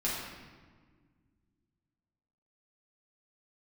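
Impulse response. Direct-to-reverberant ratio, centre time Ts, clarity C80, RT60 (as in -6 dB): -7.5 dB, 83 ms, 2.5 dB, 1.6 s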